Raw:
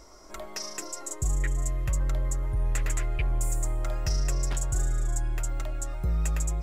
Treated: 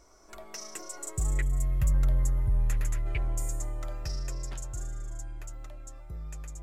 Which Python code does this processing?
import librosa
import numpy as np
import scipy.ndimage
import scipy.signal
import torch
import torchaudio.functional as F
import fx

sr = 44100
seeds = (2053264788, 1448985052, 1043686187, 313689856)

y = fx.doppler_pass(x, sr, speed_mps=13, closest_m=8.3, pass_at_s=2.12)
y = fx.spec_box(y, sr, start_s=1.41, length_s=1.65, low_hz=260.0, high_hz=9500.0, gain_db=-7)
y = y * 10.0 ** (3.0 / 20.0)